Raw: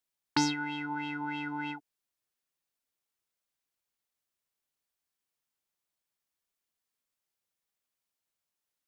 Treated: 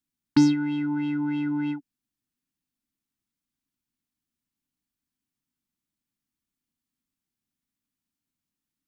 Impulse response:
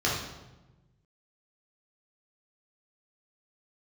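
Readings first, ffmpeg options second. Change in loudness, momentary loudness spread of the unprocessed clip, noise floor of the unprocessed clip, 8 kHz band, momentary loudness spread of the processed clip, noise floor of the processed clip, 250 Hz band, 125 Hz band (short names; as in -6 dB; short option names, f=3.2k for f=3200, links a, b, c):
+8.5 dB, 9 LU, under -85 dBFS, n/a, 9 LU, under -85 dBFS, +12.5 dB, +11.0 dB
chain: -af "lowshelf=f=360:t=q:w=3:g=11,volume=-2dB"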